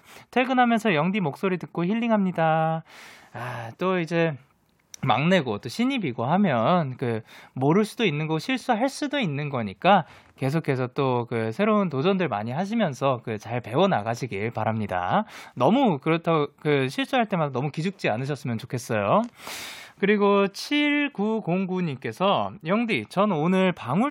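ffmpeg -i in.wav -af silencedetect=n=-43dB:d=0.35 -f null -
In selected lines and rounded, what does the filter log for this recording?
silence_start: 4.41
silence_end: 4.94 | silence_duration: 0.53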